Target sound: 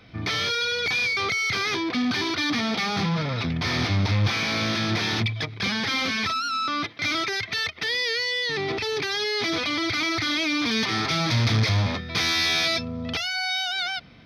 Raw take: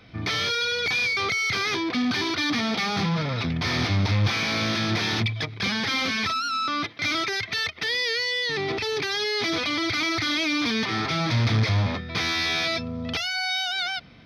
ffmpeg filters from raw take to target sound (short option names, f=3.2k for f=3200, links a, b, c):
-filter_complex "[0:a]asettb=1/sr,asplit=3[a][b][c];[a]atrim=end=10.714[d];[b]atrim=start=10.71:end=12.85,asetpts=PTS-STARTPTS,afade=t=in:d=0.004:c=qsin,afade=t=out:st=2.136:d=0.004:c=qsin,highshelf=f=4.8k:g=9[e];[c]atrim=start=12.846[f];[d][e]acrossfade=d=0.004:c1=hsin:c2=qsin[g];[g][f]acrossfade=d=0.004:c1=qsin:c2=hsin"